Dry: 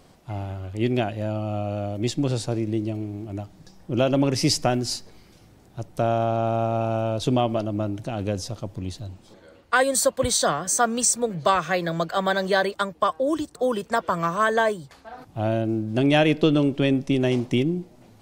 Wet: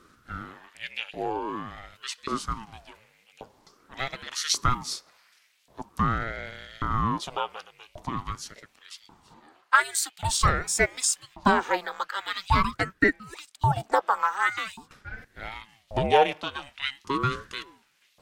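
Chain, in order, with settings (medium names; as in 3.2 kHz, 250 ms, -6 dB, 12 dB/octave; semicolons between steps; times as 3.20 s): LFO high-pass saw up 0.88 Hz 380–3100 Hz; ring modulator with a swept carrier 460 Hz, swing 70%, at 0.46 Hz; trim -1.5 dB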